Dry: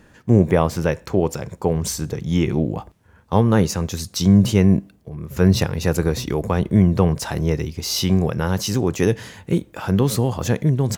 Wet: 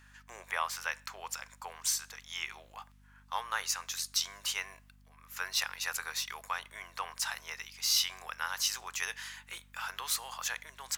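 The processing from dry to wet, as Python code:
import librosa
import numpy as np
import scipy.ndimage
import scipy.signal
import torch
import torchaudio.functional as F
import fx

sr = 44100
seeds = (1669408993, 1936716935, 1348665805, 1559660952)

y = scipy.signal.sosfilt(scipy.signal.butter(4, 1100.0, 'highpass', fs=sr, output='sos'), x)
y = fx.add_hum(y, sr, base_hz=50, snr_db=23)
y = F.gain(torch.from_numpy(y), -4.0).numpy()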